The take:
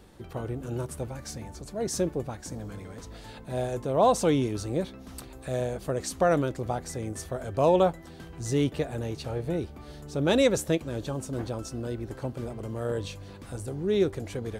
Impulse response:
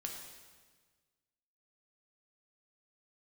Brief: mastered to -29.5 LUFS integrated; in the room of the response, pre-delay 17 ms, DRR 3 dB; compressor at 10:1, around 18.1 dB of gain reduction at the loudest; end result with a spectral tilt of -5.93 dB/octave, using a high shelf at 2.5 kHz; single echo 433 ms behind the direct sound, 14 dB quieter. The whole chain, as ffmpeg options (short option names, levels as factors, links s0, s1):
-filter_complex "[0:a]highshelf=f=2500:g=-3.5,acompressor=threshold=0.0158:ratio=10,aecho=1:1:433:0.2,asplit=2[s0][s1];[1:a]atrim=start_sample=2205,adelay=17[s2];[s1][s2]afir=irnorm=-1:irlink=0,volume=0.794[s3];[s0][s3]amix=inputs=2:normalize=0,volume=3.16"